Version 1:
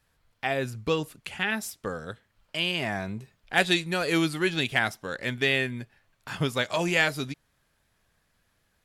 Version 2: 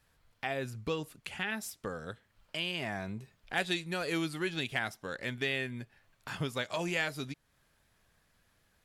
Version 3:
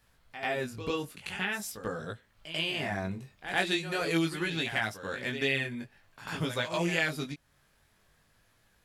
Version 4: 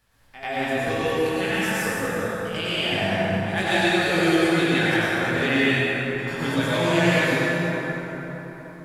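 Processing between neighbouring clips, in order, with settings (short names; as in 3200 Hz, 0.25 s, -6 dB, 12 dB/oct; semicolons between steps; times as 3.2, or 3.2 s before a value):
compressor 1.5:1, threshold -45 dBFS, peak gain reduction 10 dB
chorus 0.45 Hz, delay 17.5 ms, depth 4.2 ms; reverse echo 92 ms -10.5 dB; gain +6 dB
plate-style reverb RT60 4.6 s, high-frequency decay 0.45×, pre-delay 85 ms, DRR -10 dB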